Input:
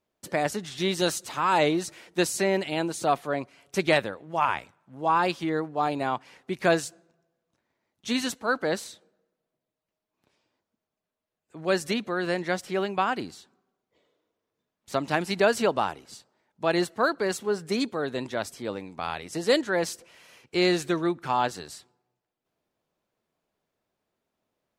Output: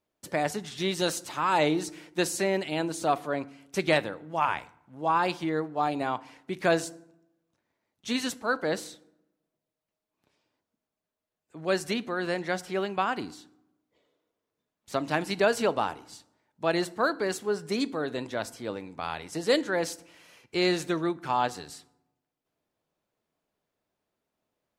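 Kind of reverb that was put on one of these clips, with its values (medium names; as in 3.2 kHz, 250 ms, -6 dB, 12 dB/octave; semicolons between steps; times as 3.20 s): FDN reverb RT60 0.68 s, low-frequency decay 1.5×, high-frequency decay 0.65×, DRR 16 dB; trim -2 dB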